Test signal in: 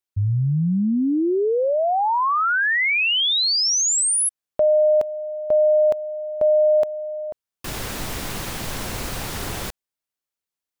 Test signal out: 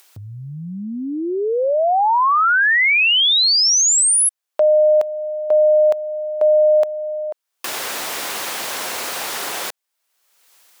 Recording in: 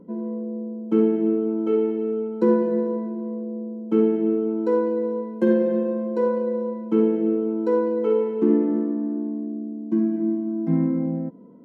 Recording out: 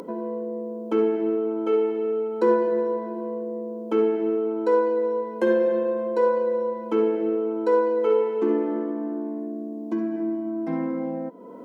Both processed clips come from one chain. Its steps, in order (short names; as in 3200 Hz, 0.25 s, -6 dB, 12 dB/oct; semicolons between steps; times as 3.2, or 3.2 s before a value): HPF 530 Hz 12 dB/oct; in parallel at +2 dB: upward compressor, threshold -25 dBFS; on the sum: gain -2 dB